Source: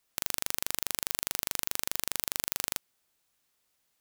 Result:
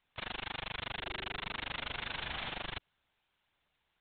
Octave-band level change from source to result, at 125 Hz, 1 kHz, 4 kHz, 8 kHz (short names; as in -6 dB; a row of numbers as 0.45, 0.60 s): +3.5 dB, +1.0 dB, -3.0 dB, under -40 dB